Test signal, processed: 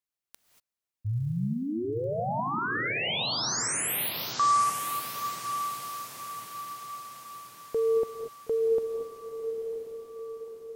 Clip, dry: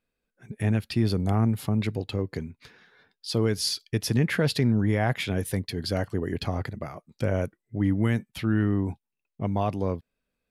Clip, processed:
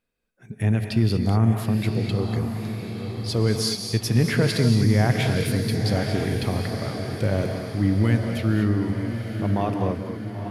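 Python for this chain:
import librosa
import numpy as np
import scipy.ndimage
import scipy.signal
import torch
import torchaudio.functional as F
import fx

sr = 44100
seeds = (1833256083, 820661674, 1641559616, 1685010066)

y = fx.dynamic_eq(x, sr, hz=110.0, q=1.5, threshold_db=-39.0, ratio=4.0, max_db=3)
y = fx.echo_diffused(y, sr, ms=976, feedback_pct=52, wet_db=-7.0)
y = fx.rev_gated(y, sr, seeds[0], gate_ms=260, shape='rising', drr_db=5.5)
y = y * librosa.db_to_amplitude(1.0)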